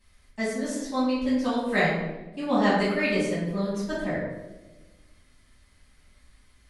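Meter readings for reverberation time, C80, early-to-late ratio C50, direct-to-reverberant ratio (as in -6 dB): 1.2 s, 4.0 dB, 0.5 dB, -11.0 dB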